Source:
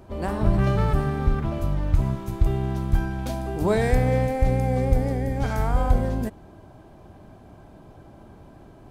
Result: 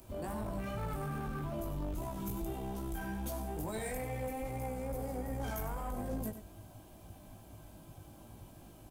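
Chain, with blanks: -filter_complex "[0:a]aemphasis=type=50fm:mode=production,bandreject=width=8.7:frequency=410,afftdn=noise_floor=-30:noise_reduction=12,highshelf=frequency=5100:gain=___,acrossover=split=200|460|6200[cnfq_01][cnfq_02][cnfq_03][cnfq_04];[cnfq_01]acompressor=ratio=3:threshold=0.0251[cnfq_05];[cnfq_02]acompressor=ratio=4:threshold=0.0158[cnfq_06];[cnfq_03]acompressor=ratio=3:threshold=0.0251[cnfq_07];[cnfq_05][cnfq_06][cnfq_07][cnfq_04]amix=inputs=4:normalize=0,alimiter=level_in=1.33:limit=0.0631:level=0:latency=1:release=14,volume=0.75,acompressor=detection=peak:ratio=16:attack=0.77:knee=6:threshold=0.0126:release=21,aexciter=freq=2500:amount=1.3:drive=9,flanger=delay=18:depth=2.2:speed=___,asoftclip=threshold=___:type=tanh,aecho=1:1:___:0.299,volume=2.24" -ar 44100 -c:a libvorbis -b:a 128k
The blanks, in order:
-5.5, 2.4, 0.0133, 96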